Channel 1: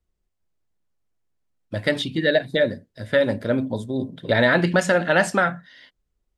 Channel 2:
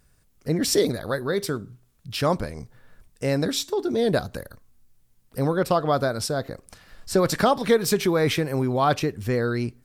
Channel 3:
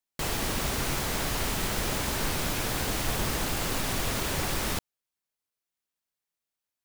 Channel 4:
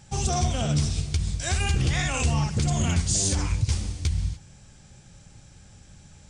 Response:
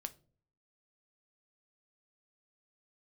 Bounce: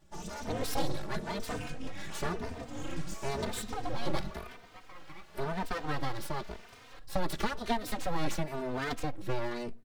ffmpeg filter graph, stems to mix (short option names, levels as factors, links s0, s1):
-filter_complex "[0:a]equalizer=f=2800:t=o:w=0.77:g=-15,volume=0.15,asplit=2[s0][s1];[1:a]equalizer=f=3900:t=o:w=0.2:g=7.5,acrossover=split=250|3000[s2][s3][s4];[s3]acompressor=threshold=0.0447:ratio=2[s5];[s2][s5][s4]amix=inputs=3:normalize=0,volume=0.668,asplit=2[s6][s7];[s7]volume=0.2[s8];[2:a]adelay=2200,volume=0.188,asplit=2[s9][s10];[s10]volume=0.282[s11];[3:a]acontrast=62,asplit=2[s12][s13];[s13]adelay=3.6,afreqshift=2.1[s14];[s12][s14]amix=inputs=2:normalize=1,volume=0.224,asplit=2[s15][s16];[s16]volume=0.299[s17];[s1]apad=whole_len=277586[s18];[s15][s18]sidechaincompress=threshold=0.00447:ratio=8:attack=40:release=102[s19];[s0][s9]amix=inputs=2:normalize=0,highpass=390,lowpass=4800,alimiter=level_in=2.82:limit=0.0631:level=0:latency=1:release=407,volume=0.355,volume=1[s20];[4:a]atrim=start_sample=2205[s21];[s8][s11][s17]amix=inputs=3:normalize=0[s22];[s22][s21]afir=irnorm=-1:irlink=0[s23];[s6][s19][s20][s23]amix=inputs=4:normalize=0,highshelf=f=3900:g=-9.5,aeval=exprs='abs(val(0))':c=same,asplit=2[s24][s25];[s25]adelay=3.1,afreqshift=0.96[s26];[s24][s26]amix=inputs=2:normalize=1"